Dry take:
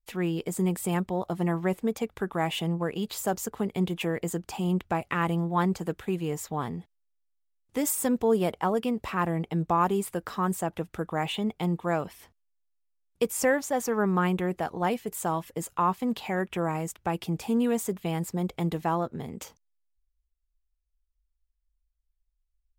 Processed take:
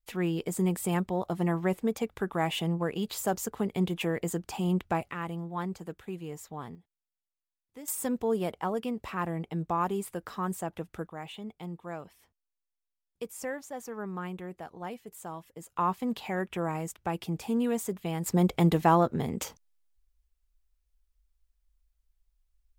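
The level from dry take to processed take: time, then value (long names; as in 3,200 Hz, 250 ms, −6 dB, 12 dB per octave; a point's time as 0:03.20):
−1 dB
from 0:05.11 −9 dB
from 0:06.75 −17.5 dB
from 0:07.88 −5 dB
from 0:11.07 −12 dB
from 0:15.76 −3 dB
from 0:18.26 +5.5 dB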